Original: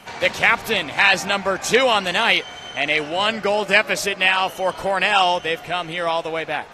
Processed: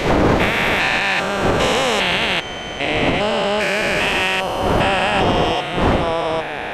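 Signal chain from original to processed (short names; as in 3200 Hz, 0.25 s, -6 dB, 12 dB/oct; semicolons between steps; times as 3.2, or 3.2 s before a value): stepped spectrum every 0.4 s; wind noise 630 Hz -25 dBFS; maximiser +10.5 dB; gain -5 dB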